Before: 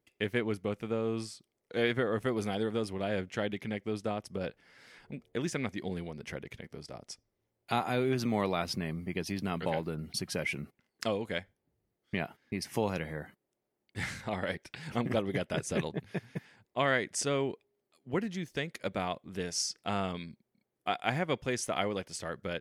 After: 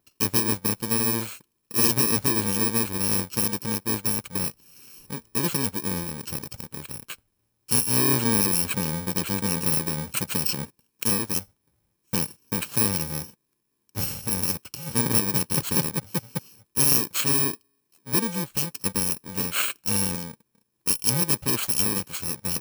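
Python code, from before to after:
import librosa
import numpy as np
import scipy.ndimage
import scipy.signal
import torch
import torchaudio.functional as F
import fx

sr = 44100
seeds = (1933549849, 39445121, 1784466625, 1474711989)

y = fx.bit_reversed(x, sr, seeds[0], block=64)
y = y * 10.0 ** (8.5 / 20.0)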